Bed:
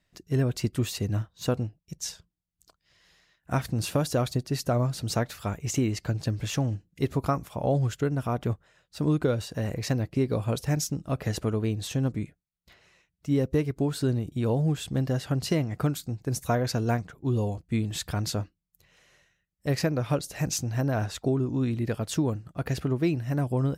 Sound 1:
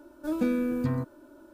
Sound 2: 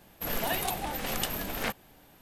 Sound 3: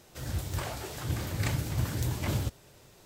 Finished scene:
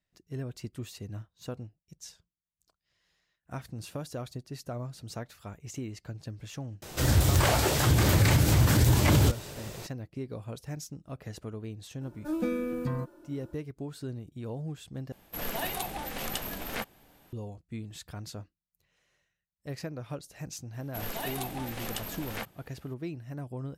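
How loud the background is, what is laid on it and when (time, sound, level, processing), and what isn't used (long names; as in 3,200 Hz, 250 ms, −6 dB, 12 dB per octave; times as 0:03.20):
bed −12 dB
0:06.82: mix in 3 −12.5 dB + boost into a limiter +26 dB
0:12.01: mix in 1 −3 dB + comb filter 5.7 ms, depth 50%
0:15.12: overwrite with 2 −3 dB
0:20.73: mix in 2 −5.5 dB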